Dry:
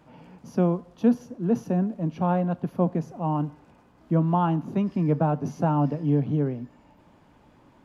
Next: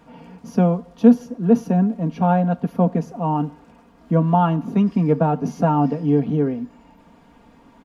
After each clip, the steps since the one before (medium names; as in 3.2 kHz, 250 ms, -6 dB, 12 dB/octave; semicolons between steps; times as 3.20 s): comb 4.3 ms, depth 63%; trim +4.5 dB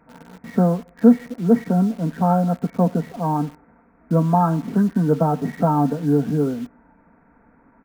knee-point frequency compression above 1.3 kHz 4:1; in parallel at -4.5 dB: word length cut 6-bit, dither none; on the sum: trim -4.5 dB